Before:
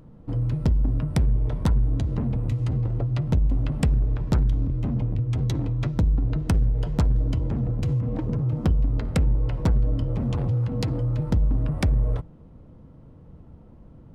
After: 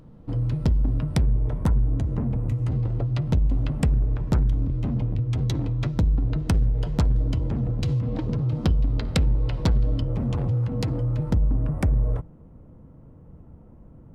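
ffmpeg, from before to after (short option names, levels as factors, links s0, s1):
-af "asetnsamples=n=441:p=0,asendcmd='1.21 equalizer g -8.5;2.68 equalizer g 3;3.72 equalizer g -3;4.66 equalizer g 3;7.8 equalizer g 10;10.01 equalizer g -1.5;11.34 equalizer g -12.5',equalizer=f=4100:t=o:w=1.2:g=3"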